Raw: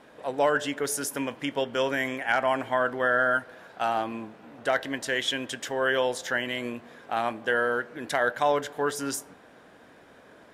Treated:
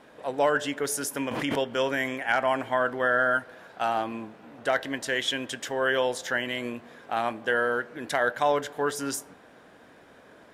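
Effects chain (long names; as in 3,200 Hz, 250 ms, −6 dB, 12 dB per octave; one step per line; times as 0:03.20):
0:01.31–0:01.75: background raised ahead of every attack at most 32 dB per second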